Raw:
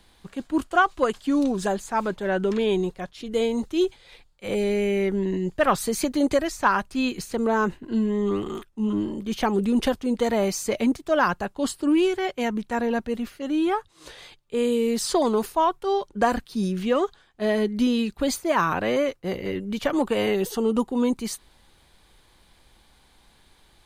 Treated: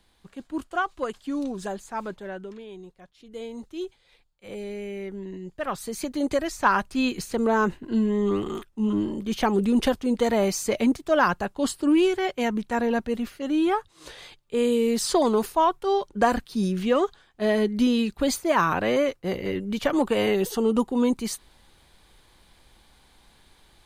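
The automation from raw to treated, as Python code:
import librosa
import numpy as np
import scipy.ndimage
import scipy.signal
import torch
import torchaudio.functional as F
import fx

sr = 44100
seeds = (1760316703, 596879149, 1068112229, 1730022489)

y = fx.gain(x, sr, db=fx.line((2.14, -7.0), (2.67, -19.5), (3.65, -11.0), (5.49, -11.0), (6.73, 0.5)))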